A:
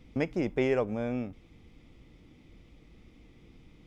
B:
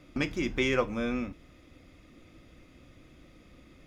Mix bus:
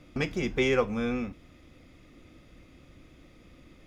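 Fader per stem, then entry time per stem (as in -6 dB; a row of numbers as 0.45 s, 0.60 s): -5.5 dB, 0.0 dB; 0.00 s, 0.00 s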